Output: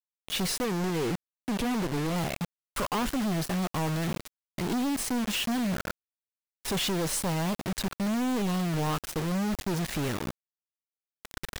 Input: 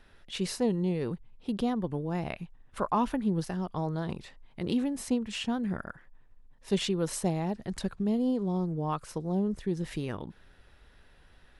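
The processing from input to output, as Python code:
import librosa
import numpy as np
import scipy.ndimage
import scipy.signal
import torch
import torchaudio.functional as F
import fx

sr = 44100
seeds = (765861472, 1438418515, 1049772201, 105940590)

y = fx.recorder_agc(x, sr, target_db=-23.0, rise_db_per_s=8.7, max_gain_db=30)
y = fx.low_shelf(y, sr, hz=67.0, db=6.0, at=(8.87, 9.57))
y = fx.quant_companded(y, sr, bits=2)
y = fx.doppler_dist(y, sr, depth_ms=0.44, at=(0.64, 2.16))
y = y * 10.0 ** (-2.0 / 20.0)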